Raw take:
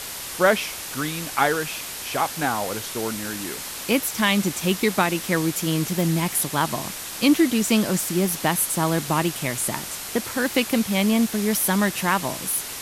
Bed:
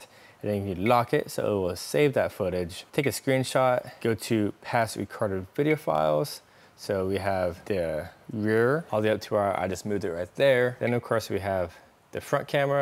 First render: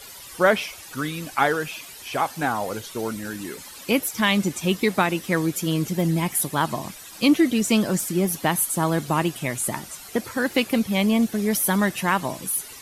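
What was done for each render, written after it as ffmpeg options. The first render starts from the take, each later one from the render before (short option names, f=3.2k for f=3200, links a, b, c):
-af "afftdn=nr=13:nf=-34"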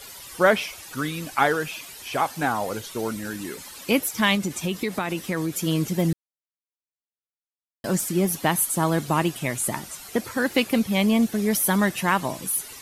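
-filter_complex "[0:a]asettb=1/sr,asplit=3[a][b][c];[a]atrim=end=4.354[d];[b]atrim=start=4.35:end=5.61,asetpts=PTS-STARTPTS,afade=t=in:d=0.004:c=qsin,afade=t=out:st=1.256:d=0.004:c=qsin,acompressor=threshold=-22dB:ratio=4:attack=3.2:release=140:knee=1:detection=peak[e];[c]atrim=start=5.606[f];[d][e]acrossfade=d=0.004:c1=hsin:c2=qsin[g];[g][f]acrossfade=d=0.004:c1=qsin:c2=hsin,asplit=3[h][i][j];[h]atrim=end=6.13,asetpts=PTS-STARTPTS,afade=t=out:st=6.126:d=0.004:c=hsin[k];[i]atrim=start=6.13:end=7.84,asetpts=PTS-STARTPTS,volume=0[l];[j]atrim=start=7.84,asetpts=PTS-STARTPTS,afade=t=in:d=0.004:c=hsin[m];[k][l][m]concat=n=3:v=0:a=1"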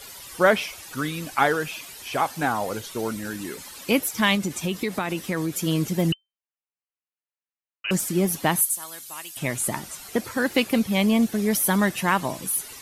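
-filter_complex "[0:a]asettb=1/sr,asplit=3[a][b][c];[a]atrim=end=6.124[d];[b]atrim=start=6.12:end=7.91,asetpts=PTS-STARTPTS,afade=t=in:d=0.004:c=qsin,afade=t=out:st=1.786:d=0.004:c=qsin,lowpass=f=2.6k:t=q:w=0.5098,lowpass=f=2.6k:t=q:w=0.6013,lowpass=f=2.6k:t=q:w=0.9,lowpass=f=2.6k:t=q:w=2.563,afreqshift=-3100[e];[c]atrim=start=7.906[f];[d][e]acrossfade=d=0.004:c1=hsin:c2=qsin[g];[g][f]acrossfade=d=0.004:c1=qsin:c2=hsin,asettb=1/sr,asplit=3[h][i][j];[h]atrim=end=8.614[k];[i]atrim=start=8.61:end=9.37,asetpts=PTS-STARTPTS,afade=t=in:d=0.004:c=qsin,afade=t=out:st=0.756:d=0.004:c=qsin,aderivative[l];[j]atrim=start=9.366[m];[k][l]acrossfade=d=0.004:c1=hsin:c2=qsin[n];[n][m]acrossfade=d=0.004:c1=qsin:c2=hsin"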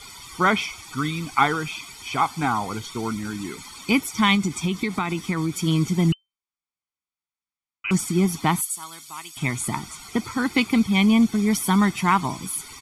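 -af "lowpass=8.1k,aecho=1:1:0.9:0.79"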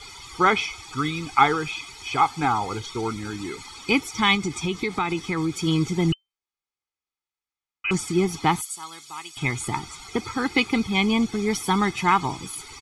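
-af "lowpass=7.2k,aecho=1:1:2.4:0.49"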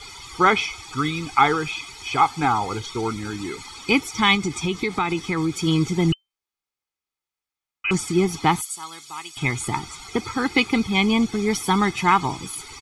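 -af "volume=2dB,alimiter=limit=-3dB:level=0:latency=1"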